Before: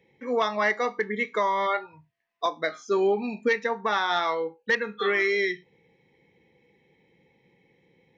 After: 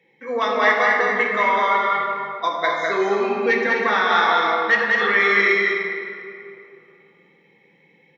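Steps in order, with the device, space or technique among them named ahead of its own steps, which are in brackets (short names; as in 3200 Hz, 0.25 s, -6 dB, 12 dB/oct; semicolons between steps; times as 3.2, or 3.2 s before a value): stadium PA (HPF 140 Hz 24 dB/oct; bell 1800 Hz +7 dB 1.9 oct; loudspeakers at several distances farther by 69 m -3 dB, 88 m -7 dB; reverb RT60 2.7 s, pre-delay 3 ms, DRR -0.5 dB); gain -1.5 dB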